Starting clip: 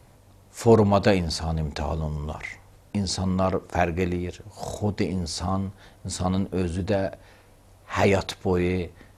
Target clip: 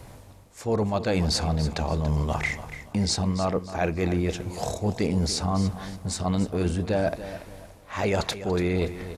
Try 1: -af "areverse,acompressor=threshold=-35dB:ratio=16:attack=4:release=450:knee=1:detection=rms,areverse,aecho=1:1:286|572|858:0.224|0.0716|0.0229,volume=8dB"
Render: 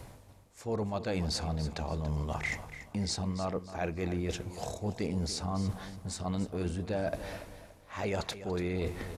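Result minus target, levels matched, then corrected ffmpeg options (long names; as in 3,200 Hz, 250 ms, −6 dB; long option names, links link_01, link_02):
downward compressor: peak gain reduction +8.5 dB
-af "areverse,acompressor=threshold=-26dB:ratio=16:attack=4:release=450:knee=1:detection=rms,areverse,aecho=1:1:286|572|858:0.224|0.0716|0.0229,volume=8dB"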